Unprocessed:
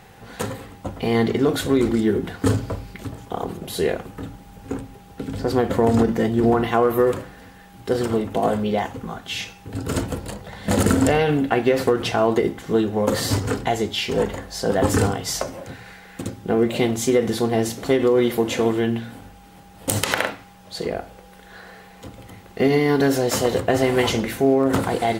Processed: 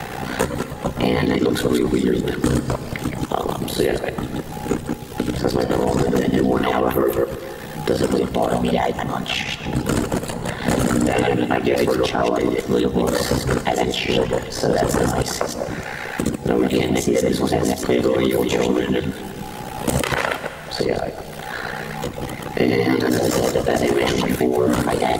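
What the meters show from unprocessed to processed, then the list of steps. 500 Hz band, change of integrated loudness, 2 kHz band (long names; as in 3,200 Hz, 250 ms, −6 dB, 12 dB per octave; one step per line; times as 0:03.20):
+1.5 dB, +1.0 dB, +3.0 dB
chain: delay that plays each chunk backwards 105 ms, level −1.5 dB
reverb reduction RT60 0.55 s
ring modulation 31 Hz
dense smooth reverb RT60 1.5 s, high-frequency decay 0.95×, DRR 12.5 dB
boost into a limiter +11 dB
multiband upward and downward compressor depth 70%
level −6.5 dB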